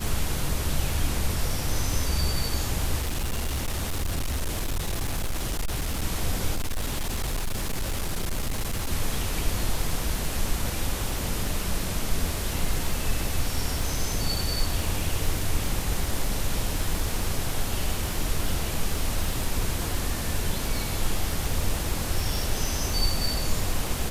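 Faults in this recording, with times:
surface crackle 57 per second −29 dBFS
0:03.00–0:06.05: clipping −23.5 dBFS
0:06.55–0:08.91: clipping −23.5 dBFS

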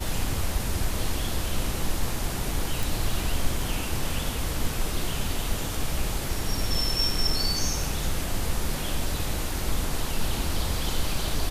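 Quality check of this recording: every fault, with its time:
0:02.83: click

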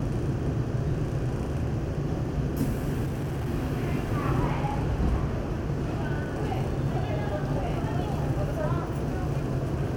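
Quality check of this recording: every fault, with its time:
0:03.05–0:03.47: clipping −27 dBFS

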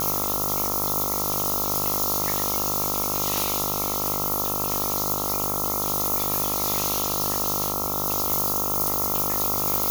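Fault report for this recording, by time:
mains buzz 50 Hz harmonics 27 −30 dBFS

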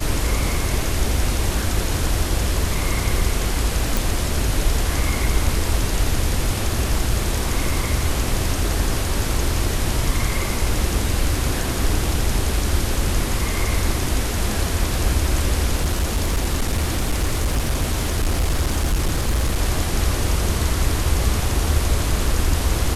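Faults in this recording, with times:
0:03.97: click
0:15.79–0:19.58: clipping −15 dBFS

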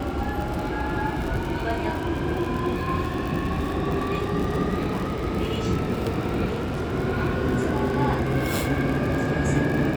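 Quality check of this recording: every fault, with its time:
surface crackle 60 per second −28 dBFS
0:06.45–0:06.94: clipping −24 dBFS

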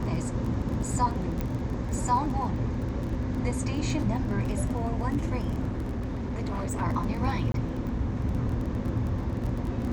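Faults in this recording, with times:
surface crackle 23 per second −33 dBFS
0:01.41: click −18 dBFS
0:05.68–0:06.82: clipping −27.5 dBFS
0:07.52–0:07.54: drop-out 22 ms

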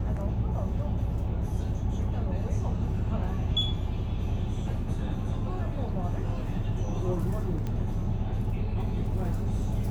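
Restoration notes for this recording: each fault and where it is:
0:07.67: click −22 dBFS

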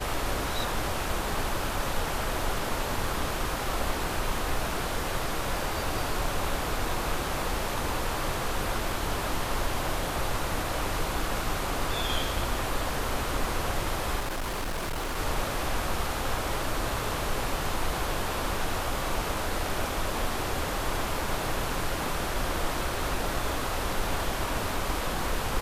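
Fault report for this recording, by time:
0:14.19–0:15.18: clipping −28 dBFS

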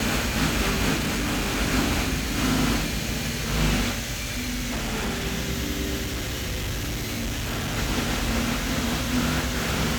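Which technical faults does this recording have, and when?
0:00.96–0:01.60: clipping −22 dBFS
0:04.16–0:05.26: clipping −24 dBFS
0:06.01–0:07.78: clipping −25 dBFS

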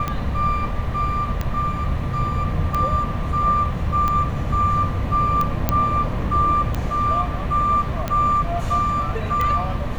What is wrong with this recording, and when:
scratch tick 45 rpm −10 dBFS
0:05.69: click −4 dBFS

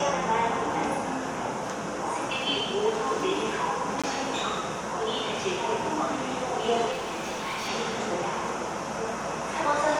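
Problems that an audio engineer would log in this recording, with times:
0:04.02–0:04.04: drop-out 16 ms
0:06.91–0:07.69: clipping −29 dBFS

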